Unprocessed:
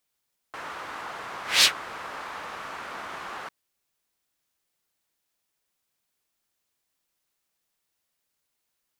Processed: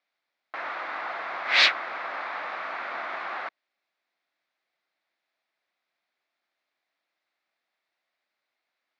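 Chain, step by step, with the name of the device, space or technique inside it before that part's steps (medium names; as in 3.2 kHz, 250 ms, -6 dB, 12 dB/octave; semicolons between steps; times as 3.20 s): phone earpiece (cabinet simulation 370–3900 Hz, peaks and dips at 440 Hz -7 dB, 680 Hz +4 dB, 960 Hz -3 dB, 2.1 kHz +4 dB, 3 kHz -7 dB); trim +4 dB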